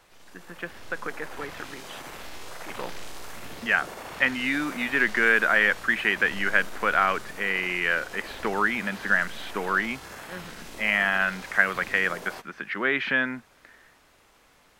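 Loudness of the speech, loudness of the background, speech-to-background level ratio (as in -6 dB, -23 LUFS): -24.5 LUFS, -41.0 LUFS, 16.5 dB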